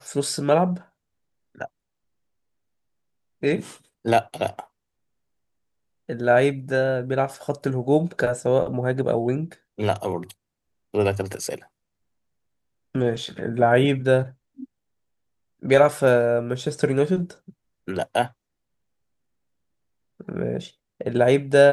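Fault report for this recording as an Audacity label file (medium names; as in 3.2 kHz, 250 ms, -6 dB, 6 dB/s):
13.260000	13.260000	dropout 2.4 ms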